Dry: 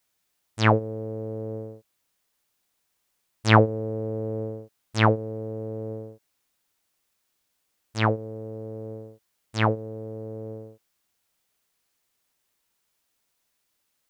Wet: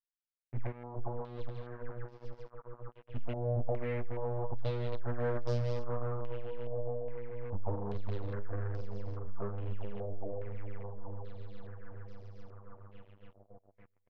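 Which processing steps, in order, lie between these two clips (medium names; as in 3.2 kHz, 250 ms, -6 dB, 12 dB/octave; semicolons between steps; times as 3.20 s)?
tracing distortion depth 0.19 ms; Doppler pass-by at 5.83 s, 30 m/s, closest 2.2 m; compression 2.5:1, threshold -56 dBFS, peak gain reduction 11.5 dB; bass shelf 76 Hz +10.5 dB; feedback delay 417 ms, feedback 45%, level -4.5 dB; flange 0.98 Hz, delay 2.4 ms, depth 4.9 ms, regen +19%; tilt EQ -4 dB/octave; multi-head delay 280 ms, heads second and third, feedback 72%, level -15.5 dB; waveshaping leveller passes 5; step-sequenced low-pass 2.4 Hz 680–5200 Hz; trim +3 dB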